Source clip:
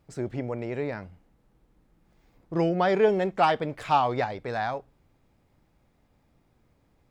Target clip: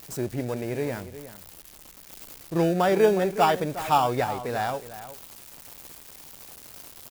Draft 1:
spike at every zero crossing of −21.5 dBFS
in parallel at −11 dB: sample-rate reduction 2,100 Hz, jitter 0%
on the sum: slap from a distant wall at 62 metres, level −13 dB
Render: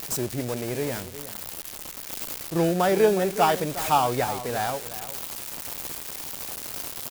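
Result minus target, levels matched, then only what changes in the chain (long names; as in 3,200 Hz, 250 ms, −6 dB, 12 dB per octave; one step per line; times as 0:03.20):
spike at every zero crossing: distortion +10 dB
change: spike at every zero crossing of −32 dBFS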